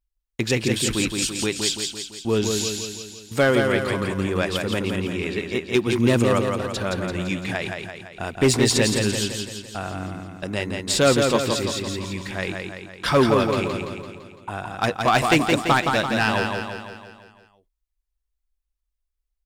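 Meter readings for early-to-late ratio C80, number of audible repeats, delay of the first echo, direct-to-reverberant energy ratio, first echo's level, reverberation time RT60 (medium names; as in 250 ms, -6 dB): no reverb, 6, 169 ms, no reverb, -4.5 dB, no reverb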